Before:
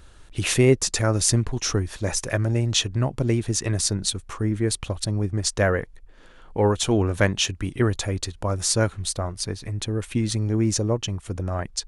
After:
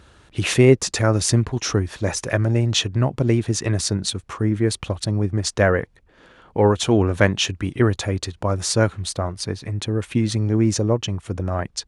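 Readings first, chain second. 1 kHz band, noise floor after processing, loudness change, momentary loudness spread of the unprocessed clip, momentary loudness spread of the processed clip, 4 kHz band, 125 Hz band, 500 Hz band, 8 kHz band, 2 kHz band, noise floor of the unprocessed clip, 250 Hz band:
+4.0 dB, -55 dBFS, +2.5 dB, 8 LU, 9 LU, +1.5 dB, +3.0 dB, +4.0 dB, -1.5 dB, +3.5 dB, -48 dBFS, +4.0 dB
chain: high-pass 74 Hz; treble shelf 6.8 kHz -10.5 dB; trim +4 dB

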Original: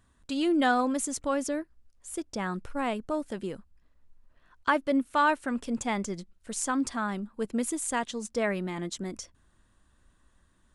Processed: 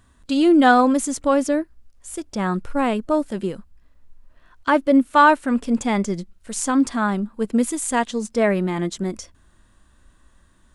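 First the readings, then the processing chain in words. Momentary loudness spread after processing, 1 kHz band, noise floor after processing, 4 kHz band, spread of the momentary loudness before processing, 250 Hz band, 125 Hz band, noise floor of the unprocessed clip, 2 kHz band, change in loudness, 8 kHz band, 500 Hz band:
15 LU, +10.0 dB, -57 dBFS, +6.5 dB, 14 LU, +11.0 dB, +11.0 dB, -66 dBFS, +8.0 dB, +10.0 dB, +5.5 dB, +10.0 dB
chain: harmonic-percussive split harmonic +7 dB; trim +4 dB

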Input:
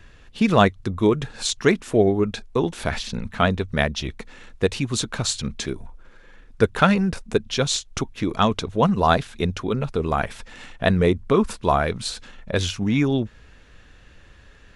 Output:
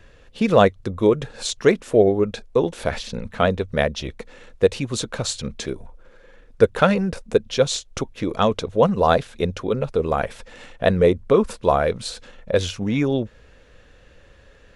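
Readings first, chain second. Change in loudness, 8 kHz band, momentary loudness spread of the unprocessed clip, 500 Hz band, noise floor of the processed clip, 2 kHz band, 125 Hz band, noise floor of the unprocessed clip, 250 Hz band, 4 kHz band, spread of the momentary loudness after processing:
+1.0 dB, -2.0 dB, 12 LU, +4.0 dB, -51 dBFS, -2.0 dB, -2.0 dB, -50 dBFS, -1.0 dB, -2.0 dB, 13 LU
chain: peaking EQ 520 Hz +10.5 dB 0.56 oct; trim -2 dB

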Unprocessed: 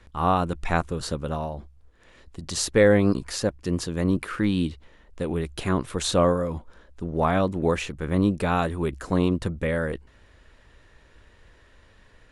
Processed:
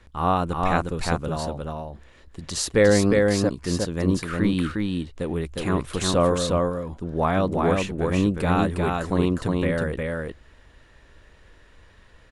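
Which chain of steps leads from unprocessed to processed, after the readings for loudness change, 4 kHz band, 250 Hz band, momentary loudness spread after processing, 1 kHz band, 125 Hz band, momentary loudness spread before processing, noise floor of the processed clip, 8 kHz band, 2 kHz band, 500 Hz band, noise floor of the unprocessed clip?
+1.5 dB, +2.0 dB, +1.5 dB, 11 LU, +1.5 dB, +2.0 dB, 10 LU, -53 dBFS, +2.0 dB, +1.5 dB, +2.0 dB, -56 dBFS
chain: delay 358 ms -3 dB

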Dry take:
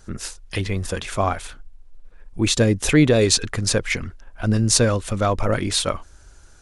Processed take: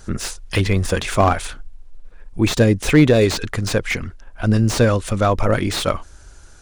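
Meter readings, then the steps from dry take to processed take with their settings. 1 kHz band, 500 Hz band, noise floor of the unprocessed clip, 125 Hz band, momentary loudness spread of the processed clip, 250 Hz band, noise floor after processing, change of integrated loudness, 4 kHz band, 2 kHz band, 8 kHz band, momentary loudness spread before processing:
+4.5 dB, +3.5 dB, -48 dBFS, +3.5 dB, 11 LU, +3.0 dB, -43 dBFS, +2.0 dB, -2.5 dB, +3.0 dB, -5.5 dB, 15 LU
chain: gain riding within 4 dB 2 s; slew-rate limiter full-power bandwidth 250 Hz; trim +3 dB

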